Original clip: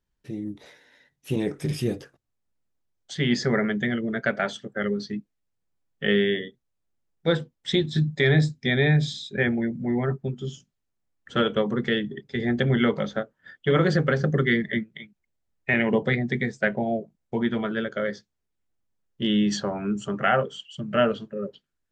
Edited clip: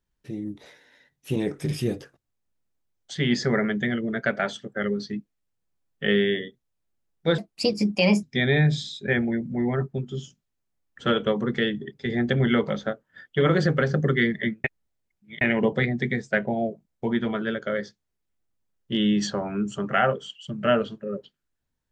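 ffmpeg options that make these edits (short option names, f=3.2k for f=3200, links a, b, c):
-filter_complex "[0:a]asplit=5[a][b][c][d][e];[a]atrim=end=7.384[f];[b]atrim=start=7.38:end=8.53,asetpts=PTS-STARTPTS,asetrate=59535,aresample=44100[g];[c]atrim=start=8.526:end=14.942[h];[d]atrim=start=14.938:end=15.712,asetpts=PTS-STARTPTS,areverse[i];[e]atrim=start=15.708[j];[f][g]acrossfade=d=0.004:c1=hsin:c2=hsin[k];[k][h]acrossfade=d=0.004:c1=hsin:c2=hsin[l];[l][i]acrossfade=d=0.004:c1=hsin:c2=hsin[m];[m][j]acrossfade=d=0.004:c1=hsin:c2=hsin"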